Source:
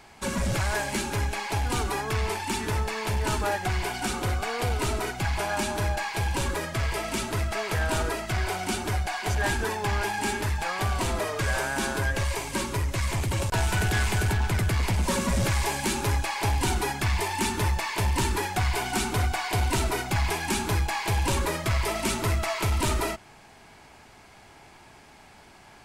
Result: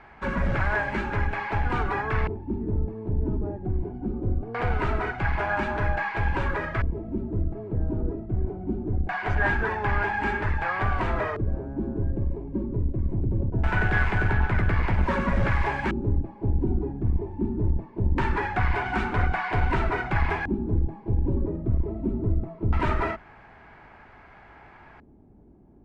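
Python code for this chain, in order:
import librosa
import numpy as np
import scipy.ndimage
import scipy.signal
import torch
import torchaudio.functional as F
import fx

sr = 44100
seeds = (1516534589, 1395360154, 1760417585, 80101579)

y = fx.octave_divider(x, sr, octaves=2, level_db=-1.0)
y = fx.filter_lfo_lowpass(y, sr, shape='square', hz=0.22, low_hz=310.0, high_hz=1700.0, q=1.7)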